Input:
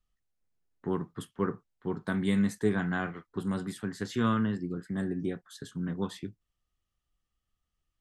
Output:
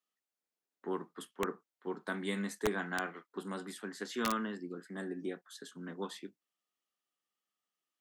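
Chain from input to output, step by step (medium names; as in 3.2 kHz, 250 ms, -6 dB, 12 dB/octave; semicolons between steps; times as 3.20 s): Bessel high-pass 340 Hz, order 6; integer overflow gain 20 dB; trim -2 dB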